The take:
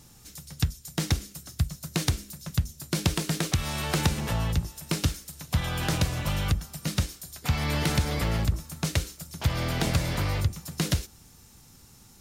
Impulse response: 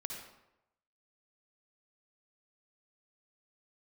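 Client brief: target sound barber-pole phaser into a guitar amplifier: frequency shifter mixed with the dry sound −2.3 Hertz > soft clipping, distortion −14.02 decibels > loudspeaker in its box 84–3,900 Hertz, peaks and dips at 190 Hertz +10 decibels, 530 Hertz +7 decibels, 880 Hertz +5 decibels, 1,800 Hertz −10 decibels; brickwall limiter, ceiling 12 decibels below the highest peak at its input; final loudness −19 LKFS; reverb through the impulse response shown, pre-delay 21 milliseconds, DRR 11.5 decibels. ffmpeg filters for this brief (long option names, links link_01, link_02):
-filter_complex "[0:a]alimiter=limit=-20dB:level=0:latency=1,asplit=2[link_01][link_02];[1:a]atrim=start_sample=2205,adelay=21[link_03];[link_02][link_03]afir=irnorm=-1:irlink=0,volume=-10.5dB[link_04];[link_01][link_04]amix=inputs=2:normalize=0,asplit=2[link_05][link_06];[link_06]afreqshift=-2.3[link_07];[link_05][link_07]amix=inputs=2:normalize=1,asoftclip=threshold=-28.5dB,highpass=84,equalizer=frequency=190:width_type=q:width=4:gain=10,equalizer=frequency=530:width_type=q:width=4:gain=7,equalizer=frequency=880:width_type=q:width=4:gain=5,equalizer=frequency=1800:width_type=q:width=4:gain=-10,lowpass=frequency=3900:width=0.5412,lowpass=frequency=3900:width=1.3066,volume=18dB"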